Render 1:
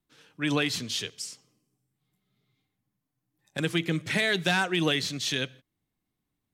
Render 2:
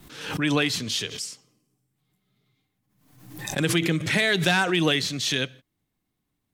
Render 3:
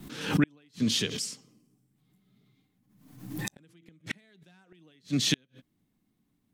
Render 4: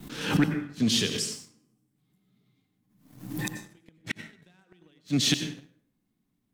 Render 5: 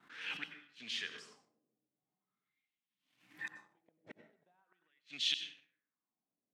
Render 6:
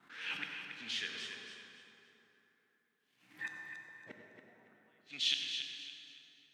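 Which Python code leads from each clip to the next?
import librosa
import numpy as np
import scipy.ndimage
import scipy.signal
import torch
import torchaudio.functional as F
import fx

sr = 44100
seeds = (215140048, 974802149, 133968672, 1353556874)

y1 = fx.pre_swell(x, sr, db_per_s=68.0)
y1 = F.gain(torch.from_numpy(y1), 3.5).numpy()
y2 = fx.peak_eq(y1, sr, hz=220.0, db=10.5, octaves=1.2)
y2 = fx.gate_flip(y2, sr, shuts_db=-12.0, range_db=-40)
y2 = F.gain(torch.from_numpy(y2), -1.0).numpy()
y3 = fx.rev_plate(y2, sr, seeds[0], rt60_s=0.66, hf_ratio=0.65, predelay_ms=75, drr_db=8.0)
y3 = fx.leveller(y3, sr, passes=1)
y3 = F.gain(torch.from_numpy(y3), -1.0).numpy()
y4 = fx.wah_lfo(y3, sr, hz=0.42, low_hz=550.0, high_hz=3100.0, q=2.9)
y4 = F.gain(torch.from_numpy(y4), -3.5).numpy()
y5 = fx.echo_feedback(y4, sr, ms=279, feedback_pct=30, wet_db=-8.0)
y5 = fx.rev_plate(y5, sr, seeds[1], rt60_s=3.6, hf_ratio=0.55, predelay_ms=0, drr_db=4.0)
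y5 = F.gain(torch.from_numpy(y5), 1.0).numpy()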